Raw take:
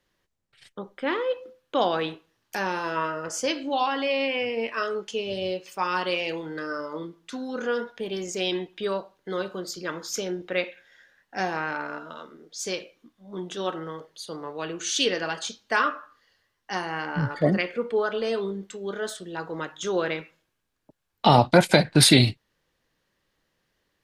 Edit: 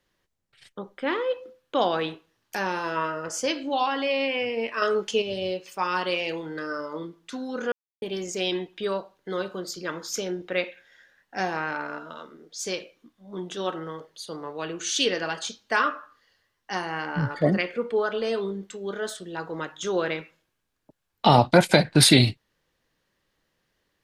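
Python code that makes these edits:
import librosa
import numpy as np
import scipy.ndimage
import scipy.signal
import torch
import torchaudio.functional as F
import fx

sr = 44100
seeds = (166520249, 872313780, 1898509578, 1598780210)

y = fx.edit(x, sr, fx.clip_gain(start_s=4.82, length_s=0.4, db=5.5),
    fx.silence(start_s=7.72, length_s=0.3), tone=tone)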